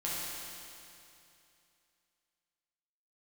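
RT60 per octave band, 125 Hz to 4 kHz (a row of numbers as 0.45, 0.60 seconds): 2.9, 2.7, 2.7, 2.7, 2.7, 2.7 seconds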